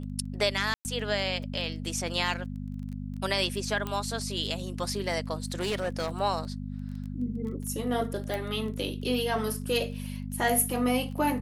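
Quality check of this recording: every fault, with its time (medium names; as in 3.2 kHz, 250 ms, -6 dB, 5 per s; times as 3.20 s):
crackle 17 per s -37 dBFS
hum 50 Hz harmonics 5 -36 dBFS
0.74–0.85 s: dropout 109 ms
3.87 s: pop -19 dBFS
5.44–6.10 s: clipped -25.5 dBFS
8.34 s: pop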